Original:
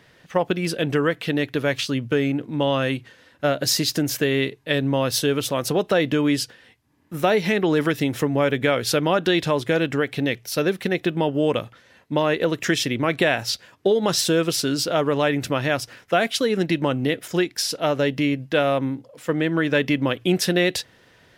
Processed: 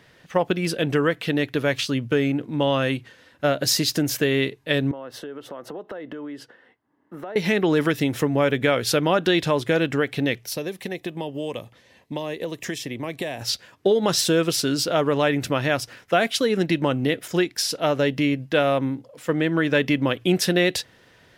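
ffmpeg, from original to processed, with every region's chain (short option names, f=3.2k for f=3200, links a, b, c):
-filter_complex "[0:a]asettb=1/sr,asplit=3[a][b][c];[a]atrim=end=4.914[d];[b]atrim=start=4.91:end=7.36,asetpts=PTS-STARTPTS,afade=t=in:d=0.004:c=qsin,afade=t=out:st=2.446:d=0.004:c=qsin,acrossover=split=220 2200:gain=0.126 1 0.1[e][f][g];[e][f][g]amix=inputs=3:normalize=0,acompressor=threshold=-32dB:ratio=6:attack=3.2:release=140:knee=1:detection=peak,bandreject=f=2.4k:w=6[h];[c]atrim=start=7.356[i];[d][h]acrossfade=d=0.004:c1=hsin:c2=qsin[j];[j][i]acrossfade=d=0.004:c1=qsin:c2=hsin,asettb=1/sr,asplit=3[k][l][m];[k]atrim=end=10.534[n];[l]atrim=start=10.53:end=13.41,asetpts=PTS-STARTPTS,afade=t=in:d=0.004:c=qsin,afade=t=out:st=2.876:d=0.004:c=qsin,equalizer=f=1.4k:w=4.9:g=-14.5,acrossover=split=620|1800|5700[o][p][q][r];[o]acompressor=threshold=-32dB:ratio=3[s];[p]acompressor=threshold=-37dB:ratio=3[t];[q]acompressor=threshold=-43dB:ratio=3[u];[r]acompressor=threshold=-38dB:ratio=3[v];[s][t][u][v]amix=inputs=4:normalize=0[w];[m]atrim=start=13.406[x];[n][w]acrossfade=d=0.004:c1=hsin:c2=qsin[y];[y][x]acrossfade=d=0.004:c1=qsin:c2=hsin"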